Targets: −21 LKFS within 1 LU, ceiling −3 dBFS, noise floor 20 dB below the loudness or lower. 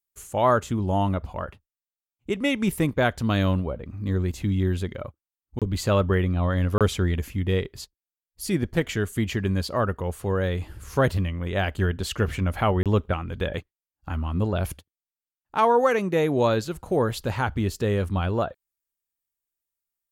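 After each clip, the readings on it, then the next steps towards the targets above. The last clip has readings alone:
number of dropouts 3; longest dropout 27 ms; integrated loudness −25.0 LKFS; sample peak −8.5 dBFS; target loudness −21.0 LKFS
→ repair the gap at 0:05.59/0:06.78/0:12.83, 27 ms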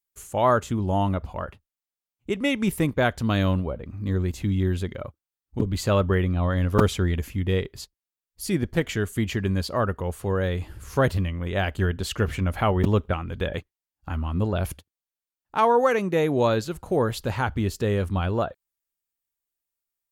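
number of dropouts 0; integrated loudness −25.0 LKFS; sample peak −3.0 dBFS; target loudness −21.0 LKFS
→ level +4 dB
brickwall limiter −3 dBFS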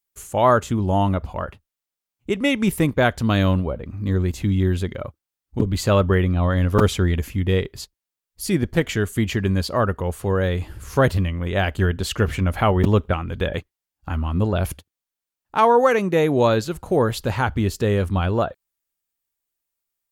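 integrated loudness −21.0 LKFS; sample peak −3.0 dBFS; background noise floor −87 dBFS

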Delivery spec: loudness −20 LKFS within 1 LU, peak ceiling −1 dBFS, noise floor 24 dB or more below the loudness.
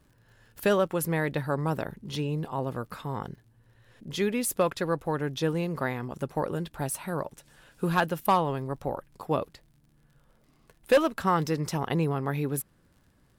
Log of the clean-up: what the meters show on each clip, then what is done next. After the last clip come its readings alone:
crackle rate 44 per second; integrated loudness −29.0 LKFS; sample peak −13.0 dBFS; target loudness −20.0 LKFS
→ click removal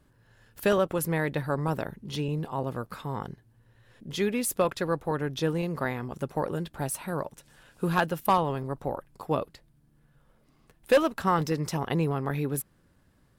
crackle rate 0.52 per second; integrated loudness −29.5 LKFS; sample peak −12.5 dBFS; target loudness −20.0 LKFS
→ level +9.5 dB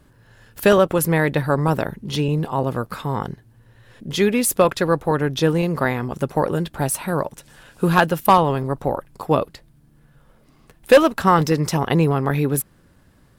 integrated loudness −20.0 LKFS; sample peak −3.0 dBFS; background noise floor −55 dBFS

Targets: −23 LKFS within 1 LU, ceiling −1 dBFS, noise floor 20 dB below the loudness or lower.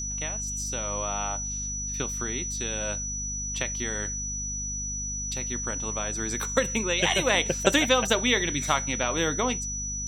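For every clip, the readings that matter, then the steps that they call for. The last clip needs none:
mains hum 50 Hz; hum harmonics up to 250 Hz; level of the hum −35 dBFS; interfering tone 5,900 Hz; level of the tone −31 dBFS; integrated loudness −26.5 LKFS; sample peak −6.5 dBFS; target loudness −23.0 LKFS
→ hum removal 50 Hz, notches 5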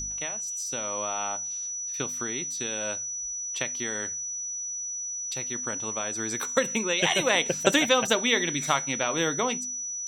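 mains hum none found; interfering tone 5,900 Hz; level of the tone −31 dBFS
→ notch filter 5,900 Hz, Q 30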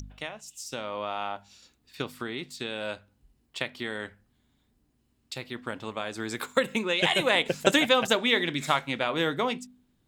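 interfering tone none found; integrated loudness −28.0 LKFS; sample peak −6.5 dBFS; target loudness −23.0 LKFS
→ level +5 dB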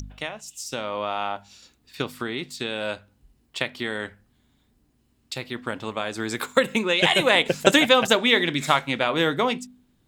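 integrated loudness −23.0 LKFS; sample peak −1.5 dBFS; background noise floor −66 dBFS

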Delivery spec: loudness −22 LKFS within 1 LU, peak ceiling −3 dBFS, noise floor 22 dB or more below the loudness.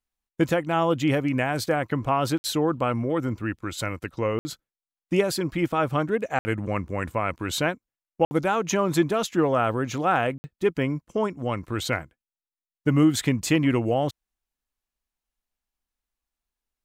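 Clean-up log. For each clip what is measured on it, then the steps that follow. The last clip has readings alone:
number of dropouts 5; longest dropout 60 ms; integrated loudness −25.0 LKFS; sample peak −9.5 dBFS; target loudness −22.0 LKFS
→ repair the gap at 0:02.38/0:04.39/0:06.39/0:08.25/0:10.38, 60 ms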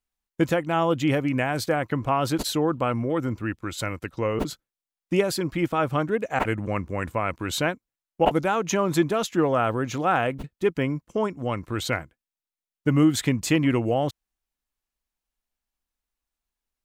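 number of dropouts 0; integrated loudness −25.0 LKFS; sample peak −7.5 dBFS; target loudness −22.0 LKFS
→ level +3 dB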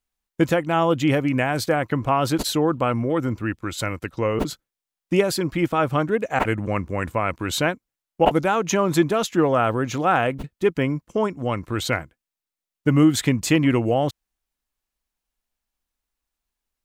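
integrated loudness −22.0 LKFS; sample peak −4.5 dBFS; background noise floor −88 dBFS

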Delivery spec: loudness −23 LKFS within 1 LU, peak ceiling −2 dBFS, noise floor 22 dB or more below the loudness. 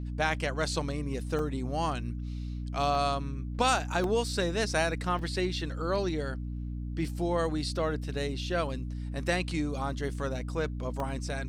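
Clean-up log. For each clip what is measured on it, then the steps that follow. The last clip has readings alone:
number of dropouts 5; longest dropout 1.9 ms; mains hum 60 Hz; hum harmonics up to 300 Hz; level of the hum −33 dBFS; integrated loudness −31.5 LKFS; sample peak −13.0 dBFS; target loudness −23.0 LKFS
→ repair the gap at 0:01.39/0:02.95/0:04.04/0:05.19/0:11.00, 1.9 ms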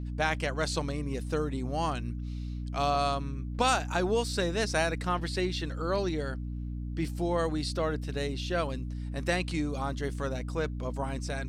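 number of dropouts 0; mains hum 60 Hz; hum harmonics up to 300 Hz; level of the hum −33 dBFS
→ hum removal 60 Hz, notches 5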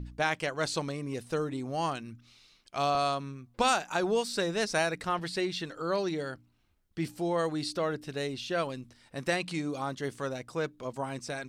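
mains hum none found; integrated loudness −32.0 LKFS; sample peak −13.5 dBFS; target loudness −23.0 LKFS
→ level +9 dB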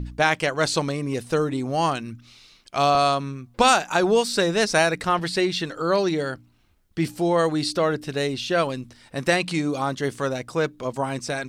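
integrated loudness −23.0 LKFS; sample peak −4.5 dBFS; background noise floor −58 dBFS

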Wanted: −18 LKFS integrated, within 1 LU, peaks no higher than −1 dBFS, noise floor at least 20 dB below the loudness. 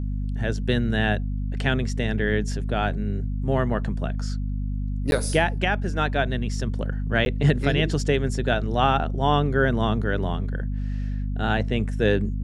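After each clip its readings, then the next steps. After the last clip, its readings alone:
number of dropouts 2; longest dropout 11 ms; mains hum 50 Hz; hum harmonics up to 250 Hz; level of the hum −24 dBFS; integrated loudness −24.5 LKFS; sample peak −6.0 dBFS; target loudness −18.0 LKFS
→ repair the gap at 0:05.11/0:07.25, 11 ms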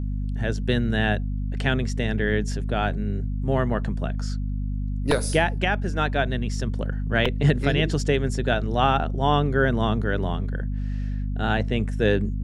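number of dropouts 0; mains hum 50 Hz; hum harmonics up to 250 Hz; level of the hum −24 dBFS
→ hum removal 50 Hz, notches 5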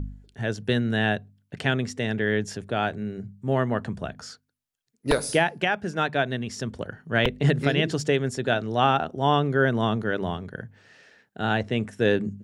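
mains hum none found; integrated loudness −25.5 LKFS; sample peak −7.0 dBFS; target loudness −18.0 LKFS
→ level +7.5 dB
brickwall limiter −1 dBFS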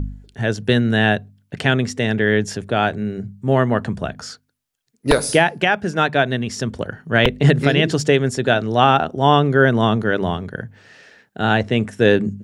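integrated loudness −18.0 LKFS; sample peak −1.0 dBFS; background noise floor −67 dBFS

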